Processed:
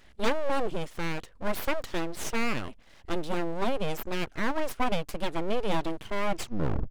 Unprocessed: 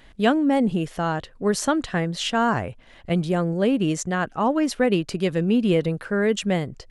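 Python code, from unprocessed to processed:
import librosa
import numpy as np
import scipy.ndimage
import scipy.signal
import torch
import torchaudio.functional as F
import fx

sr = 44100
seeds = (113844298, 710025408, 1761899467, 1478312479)

y = fx.tape_stop_end(x, sr, length_s=0.66)
y = np.abs(y)
y = y * librosa.db_to_amplitude(-4.5)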